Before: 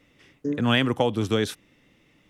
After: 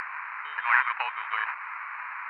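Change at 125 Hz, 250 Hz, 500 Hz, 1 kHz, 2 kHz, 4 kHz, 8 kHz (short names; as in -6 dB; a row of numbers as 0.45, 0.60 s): under -40 dB, under -40 dB, -27.0 dB, +4.0 dB, +6.0 dB, -14.5 dB, under -30 dB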